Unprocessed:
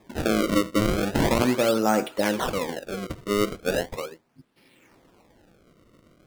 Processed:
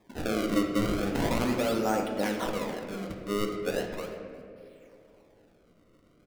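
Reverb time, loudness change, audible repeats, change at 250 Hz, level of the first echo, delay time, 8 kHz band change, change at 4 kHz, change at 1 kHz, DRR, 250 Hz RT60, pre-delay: 2.7 s, −5.5 dB, 1, −4.5 dB, −21.0 dB, 358 ms, −7.0 dB, −6.5 dB, −5.5 dB, 3.0 dB, 3.1 s, 4 ms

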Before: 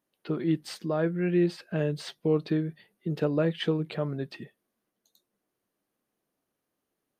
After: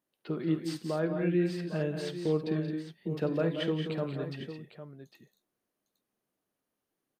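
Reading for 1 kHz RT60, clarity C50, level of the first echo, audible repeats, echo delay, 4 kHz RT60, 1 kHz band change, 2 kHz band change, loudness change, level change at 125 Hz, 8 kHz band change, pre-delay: no reverb audible, no reverb audible, −17.0 dB, 4, 50 ms, no reverb audible, −2.5 dB, −2.5 dB, −3.0 dB, −3.0 dB, can't be measured, no reverb audible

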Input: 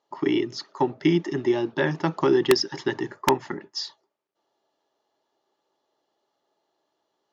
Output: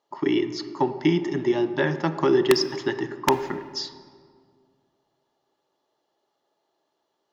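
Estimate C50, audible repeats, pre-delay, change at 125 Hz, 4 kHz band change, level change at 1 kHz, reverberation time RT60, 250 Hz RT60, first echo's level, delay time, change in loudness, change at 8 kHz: 12.0 dB, no echo audible, 25 ms, 0.0 dB, 0.0 dB, +0.5 dB, 2.0 s, 2.3 s, no echo audible, no echo audible, +0.5 dB, 0.0 dB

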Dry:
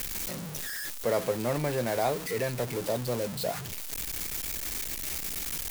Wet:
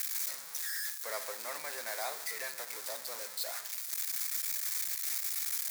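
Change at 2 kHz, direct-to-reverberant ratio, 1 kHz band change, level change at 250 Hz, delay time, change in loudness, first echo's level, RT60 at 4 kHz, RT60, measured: −3.0 dB, 11.5 dB, −9.0 dB, −28.5 dB, no echo audible, −3.5 dB, no echo audible, 0.65 s, 0.85 s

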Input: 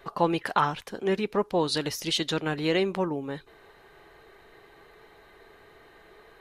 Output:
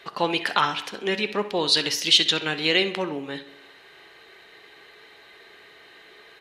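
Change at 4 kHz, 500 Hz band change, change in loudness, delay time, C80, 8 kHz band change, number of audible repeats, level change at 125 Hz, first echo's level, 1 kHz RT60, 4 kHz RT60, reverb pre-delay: +11.5 dB, 0.0 dB, +5.5 dB, 65 ms, 16.5 dB, +7.0 dB, 1, −4.0 dB, −15.0 dB, 0.95 s, 0.95 s, 11 ms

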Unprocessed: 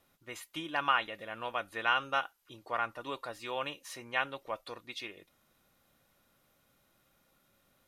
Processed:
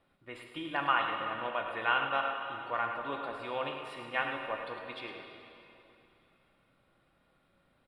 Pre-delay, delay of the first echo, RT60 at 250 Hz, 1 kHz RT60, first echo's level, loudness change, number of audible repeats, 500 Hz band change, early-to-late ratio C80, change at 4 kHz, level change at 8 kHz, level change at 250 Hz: 7 ms, 105 ms, 2.9 s, 2.9 s, −9.0 dB, +1.0 dB, 1, +2.5 dB, 3.5 dB, −1.5 dB, below −10 dB, +2.5 dB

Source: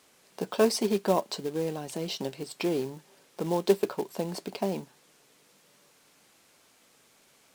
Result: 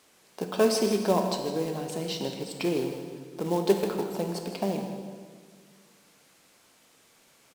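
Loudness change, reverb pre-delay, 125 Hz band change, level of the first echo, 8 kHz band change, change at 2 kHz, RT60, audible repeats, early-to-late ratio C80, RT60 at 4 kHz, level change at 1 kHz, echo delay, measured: +1.0 dB, 28 ms, +2.5 dB, −12.0 dB, +1.0 dB, +1.5 dB, 1.7 s, 1, 6.0 dB, 1.4 s, +1.5 dB, 158 ms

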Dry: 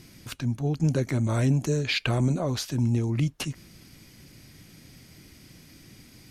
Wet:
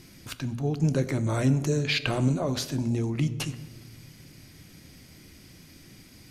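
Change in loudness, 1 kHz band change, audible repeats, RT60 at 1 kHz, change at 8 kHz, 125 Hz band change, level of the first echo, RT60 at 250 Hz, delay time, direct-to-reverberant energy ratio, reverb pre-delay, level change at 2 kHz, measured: −0.5 dB, +0.5 dB, no echo audible, 1.2 s, 0.0 dB, −1.5 dB, no echo audible, 2.1 s, no echo audible, 11.0 dB, 11 ms, 0.0 dB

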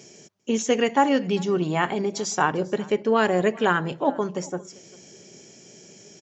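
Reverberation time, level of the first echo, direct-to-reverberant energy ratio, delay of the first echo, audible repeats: no reverb audible, −23.5 dB, no reverb audible, 396 ms, 1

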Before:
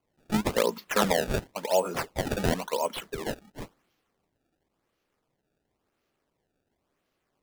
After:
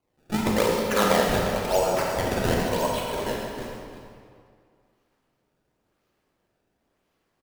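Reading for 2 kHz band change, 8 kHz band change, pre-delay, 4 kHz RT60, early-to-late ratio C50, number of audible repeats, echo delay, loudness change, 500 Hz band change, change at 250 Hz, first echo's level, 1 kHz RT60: +4.5 dB, +3.5 dB, 26 ms, 1.6 s, −1.0 dB, 2, 132 ms, +4.0 dB, +4.5 dB, +4.5 dB, −10.0 dB, 2.2 s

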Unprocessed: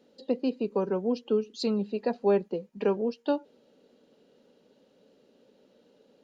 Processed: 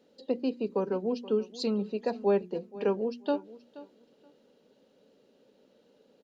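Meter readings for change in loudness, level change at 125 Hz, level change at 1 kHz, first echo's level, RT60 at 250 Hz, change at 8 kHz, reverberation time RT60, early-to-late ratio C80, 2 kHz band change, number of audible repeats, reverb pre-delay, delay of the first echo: −1.5 dB, −2.0 dB, −1.5 dB, −18.0 dB, no reverb audible, can't be measured, no reverb audible, no reverb audible, −1.5 dB, 2, no reverb audible, 477 ms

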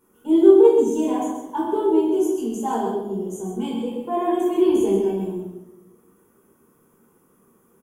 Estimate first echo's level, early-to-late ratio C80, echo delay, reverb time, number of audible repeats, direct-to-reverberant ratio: −7.0 dB, 3.0 dB, 129 ms, 1.1 s, 1, −5.5 dB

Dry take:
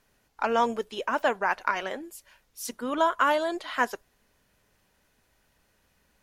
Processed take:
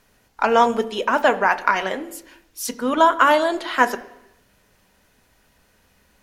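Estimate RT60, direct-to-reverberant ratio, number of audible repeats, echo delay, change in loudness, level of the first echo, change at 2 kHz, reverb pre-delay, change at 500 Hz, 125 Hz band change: 0.85 s, 10.0 dB, no echo audible, no echo audible, +8.5 dB, no echo audible, +8.5 dB, 3 ms, +8.5 dB, can't be measured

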